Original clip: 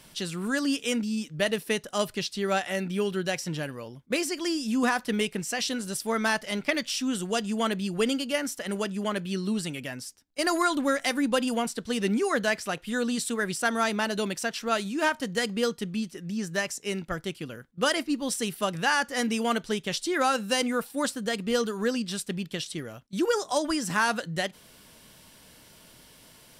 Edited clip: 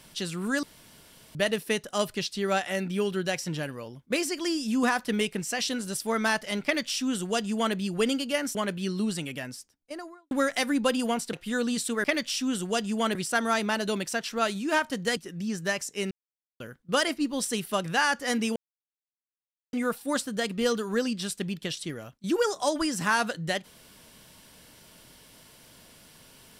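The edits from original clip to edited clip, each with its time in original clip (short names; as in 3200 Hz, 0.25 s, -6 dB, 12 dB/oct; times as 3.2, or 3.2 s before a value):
0.63–1.35 room tone
6.64–7.75 copy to 13.45
8.55–9.03 cut
9.86–10.79 studio fade out
11.81–12.74 cut
15.47–16.06 cut
17–17.49 mute
19.45–20.62 mute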